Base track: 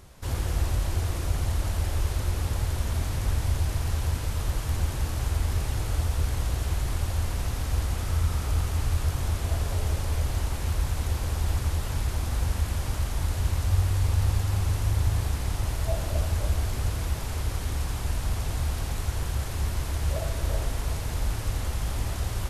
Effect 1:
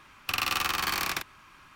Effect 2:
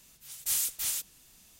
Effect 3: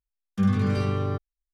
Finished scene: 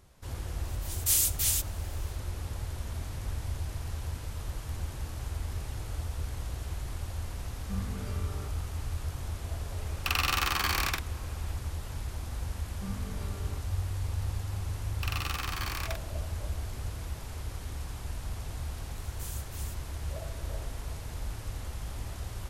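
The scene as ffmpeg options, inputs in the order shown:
ffmpeg -i bed.wav -i cue0.wav -i cue1.wav -i cue2.wav -filter_complex "[2:a]asplit=2[link_01][link_02];[3:a]asplit=2[link_03][link_04];[1:a]asplit=2[link_05][link_06];[0:a]volume=-9dB[link_07];[link_01]tiltshelf=frequency=970:gain=-5[link_08];[link_06]acontrast=43[link_09];[link_08]atrim=end=1.59,asetpts=PTS-STARTPTS,volume=-1dB,afade=type=in:duration=0.1,afade=type=out:start_time=1.49:duration=0.1,adelay=600[link_10];[link_03]atrim=end=1.53,asetpts=PTS-STARTPTS,volume=-16.5dB,afade=type=in:duration=0.004:curve=hsin,afade=type=out:start_time=1.526:duration=0.004:curve=hsin,adelay=7310[link_11];[link_05]atrim=end=1.75,asetpts=PTS-STARTPTS,volume=-0.5dB,afade=type=in:duration=0.004:curve=hsin,afade=type=out:start_time=1.746:duration=0.004:curve=hsin,adelay=9770[link_12];[link_04]atrim=end=1.53,asetpts=PTS-STARTPTS,volume=-17.5dB,afade=type=in:duration=0.004:curve=hsin,afade=type=out:start_time=1.526:duration=0.004:curve=hsin,adelay=12430[link_13];[link_09]atrim=end=1.75,asetpts=PTS-STARTPTS,volume=-13.5dB,afade=type=in:duration=0.004:curve=hsin,afade=type=out:start_time=1.746:duration=0.004:curve=hsin,adelay=14740[link_14];[link_02]atrim=end=1.59,asetpts=PTS-STARTPTS,volume=-15.5dB,afade=type=in:duration=0.004:curve=hsin,afade=type=out:start_time=1.586:duration=0.004:curve=hsin,adelay=18730[link_15];[link_07][link_10][link_11][link_12][link_13][link_14][link_15]amix=inputs=7:normalize=0" out.wav

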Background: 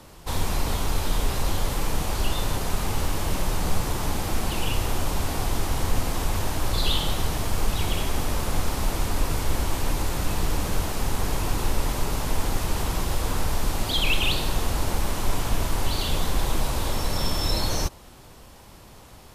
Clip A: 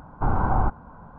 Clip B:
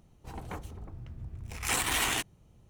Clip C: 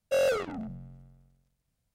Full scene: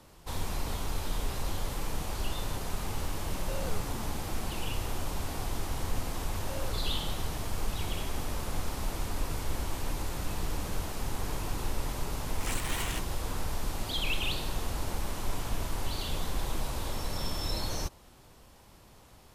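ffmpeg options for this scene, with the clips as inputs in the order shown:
ffmpeg -i bed.wav -i cue0.wav -i cue1.wav -i cue2.wav -filter_complex "[3:a]asplit=2[link_01][link_02];[0:a]volume=-8.5dB[link_03];[link_01]acompressor=threshold=-33dB:ratio=6:attack=3.2:release=140:knee=1:detection=peak,atrim=end=1.94,asetpts=PTS-STARTPTS,volume=-6dB,afade=type=in:duration=0.004:curve=hsin,afade=type=out:start_time=1.936:duration=0.004:curve=hsin,adelay=148617S[link_04];[link_02]atrim=end=1.94,asetpts=PTS-STARTPTS,volume=-17.5dB,afade=type=in:duration=0.004:curve=hsin,afade=type=out:start_time=1.936:duration=0.004:curve=hsin,adelay=6370[link_05];[2:a]atrim=end=2.69,asetpts=PTS-STARTPTS,volume=-8dB,afade=type=in:duration=0.004:curve=hsin,afade=type=out:start_time=2.686:duration=0.004:curve=hsin,adelay=10780[link_06];[link_03][link_04][link_05][link_06]amix=inputs=4:normalize=0" out.wav

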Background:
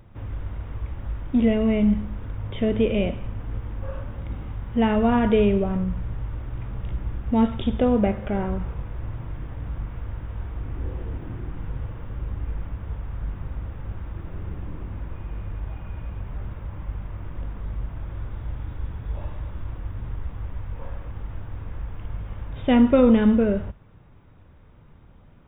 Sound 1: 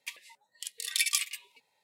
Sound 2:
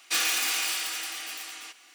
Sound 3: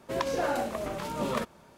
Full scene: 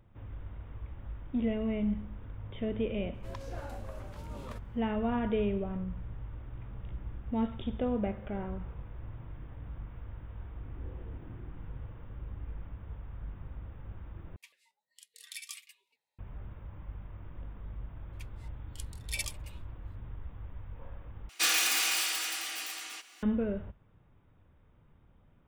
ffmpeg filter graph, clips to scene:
ffmpeg -i bed.wav -i cue0.wav -i cue1.wav -i cue2.wav -filter_complex "[1:a]asplit=2[link_01][link_02];[0:a]volume=-11.5dB[link_03];[link_01]flanger=delay=2.3:depth=9.3:regen=73:speed=1.4:shape=sinusoidal[link_04];[link_02]aeval=exprs='val(0)*pow(10,-25*(0.5-0.5*cos(2*PI*2.8*n/s))/20)':channel_layout=same[link_05];[link_03]asplit=3[link_06][link_07][link_08];[link_06]atrim=end=14.364[link_09];[link_04]atrim=end=1.83,asetpts=PTS-STARTPTS,volume=-12dB[link_10];[link_07]atrim=start=16.186:end=21.294[link_11];[2:a]atrim=end=1.94,asetpts=PTS-STARTPTS,volume=-1dB[link_12];[link_08]atrim=start=23.226[link_13];[3:a]atrim=end=1.77,asetpts=PTS-STARTPTS,volume=-16dB,afade=type=in:duration=0.004:curve=hsin,afade=type=out:start_time=1.766:duration=0.004:curve=hsin,adelay=3140[link_14];[link_05]atrim=end=1.83,asetpts=PTS-STARTPTS,volume=-3.5dB,afade=type=in:duration=0.004:curve=hsin,afade=type=out:start_time=1.826:duration=0.004:curve=hsin,adelay=18130[link_15];[link_09][link_10]acrossfade=duration=0.004:curve1=hsin:curve2=hsin[link_16];[link_16][link_11]acrossfade=duration=0.004:curve1=hsin:curve2=hsin[link_17];[link_17][link_12]acrossfade=duration=0.004:curve1=hsin:curve2=hsin[link_18];[link_18][link_13]acrossfade=duration=0.004:curve1=hsin:curve2=hsin[link_19];[link_19][link_14][link_15]amix=inputs=3:normalize=0" out.wav

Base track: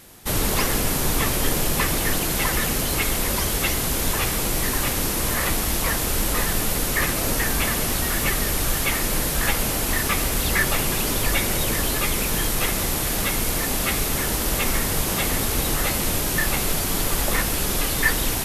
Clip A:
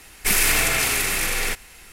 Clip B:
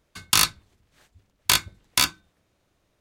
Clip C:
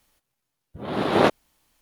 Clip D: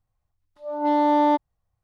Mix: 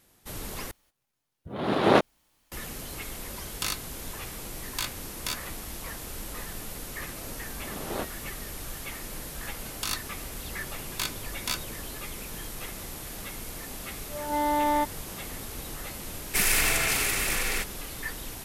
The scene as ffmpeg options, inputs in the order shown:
ffmpeg -i bed.wav -i cue0.wav -i cue1.wav -i cue2.wav -i cue3.wav -filter_complex "[3:a]asplit=2[link_01][link_02];[2:a]asplit=2[link_03][link_04];[0:a]volume=-15.5dB[link_05];[link_04]alimiter=limit=-8dB:level=0:latency=1:release=56[link_06];[4:a]equalizer=frequency=2100:width_type=o:width=2.2:gain=11.5[link_07];[link_05]asplit=2[link_08][link_09];[link_08]atrim=end=0.714[link_10];[link_01]atrim=end=1.81,asetpts=PTS-STARTPTS,volume=-1.5dB[link_11];[link_09]atrim=start=2.516[link_12];[link_03]atrim=end=3,asetpts=PTS-STARTPTS,volume=-13dB,afade=type=in:duration=0.004:curve=hsin,afade=type=out:start_time=2.996:duration=0.004:curve=hsin,adelay=145089S[link_13];[link_02]atrim=end=1.81,asetpts=PTS-STARTPTS,volume=-16dB,afade=type=in:duration=0.004:curve=hsin,afade=type=out:start_time=1.806:duration=0.004:curve=hsin,adelay=6750[link_14];[link_06]atrim=end=3,asetpts=PTS-STARTPTS,volume=-8.5dB,afade=type=in:duration=0.004:curve=hsin,afade=type=out:start_time=2.996:duration=0.004:curve=hsin,adelay=9500[link_15];[link_07]atrim=end=1.83,asetpts=PTS-STARTPTS,volume=-10dB,afade=type=in:duration=0.004:curve=hsin,afade=type=out:start_time=1.826:duration=0.004:curve=hsin,adelay=594468S[link_16];[1:a]atrim=end=1.92,asetpts=PTS-STARTPTS,volume=-5dB,afade=type=in:duration=0.004:curve=hsin,afade=type=out:start_time=1.916:duration=0.004:curve=hsin,adelay=16090[link_17];[link_10][link_11]acrossfade=duration=0.004:curve1=hsin:curve2=hsin[link_18];[link_18][link_12]acrossfade=duration=0.004:curve1=hsin:curve2=hsin[link_19];[link_19][link_13][link_14][link_15][link_16][link_17]amix=inputs=6:normalize=0" out.wav

